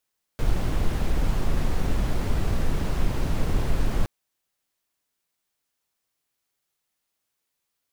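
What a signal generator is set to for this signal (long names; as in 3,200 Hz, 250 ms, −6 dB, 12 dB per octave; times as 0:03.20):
noise brown, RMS −21 dBFS 3.67 s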